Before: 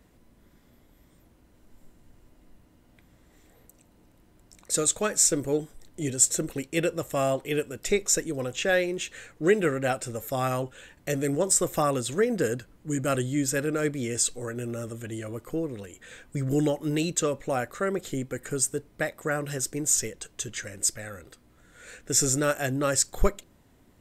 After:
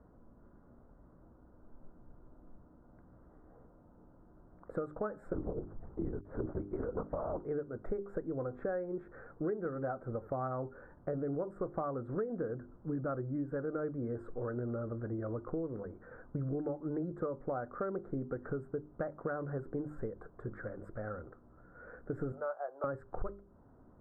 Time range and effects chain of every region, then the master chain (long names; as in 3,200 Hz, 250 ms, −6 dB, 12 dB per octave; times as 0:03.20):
0:05.33–0:07.40: compressor whose output falls as the input rises −27 dBFS, ratio −0.5 + linear-prediction vocoder at 8 kHz whisper
0:22.32–0:22.84: inverse Chebyshev high-pass filter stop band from 230 Hz, stop band 50 dB + parametric band 1,900 Hz −12.5 dB 1.4 octaves
whole clip: elliptic low-pass filter 1,400 Hz, stop band 50 dB; mains-hum notches 50/100/150/200/250/300/350/400 Hz; downward compressor 6 to 1, threshold −35 dBFS; level +1 dB